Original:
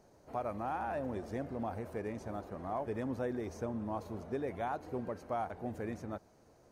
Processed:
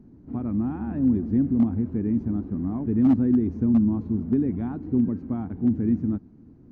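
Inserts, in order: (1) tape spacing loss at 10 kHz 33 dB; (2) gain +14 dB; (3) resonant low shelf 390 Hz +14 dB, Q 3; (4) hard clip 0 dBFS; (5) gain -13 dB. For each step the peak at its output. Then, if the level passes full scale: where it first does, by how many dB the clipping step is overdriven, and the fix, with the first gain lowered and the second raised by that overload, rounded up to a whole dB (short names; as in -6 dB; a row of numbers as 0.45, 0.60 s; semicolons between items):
-27.5, -13.5, +3.5, 0.0, -13.0 dBFS; step 3, 3.5 dB; step 2 +10 dB, step 5 -9 dB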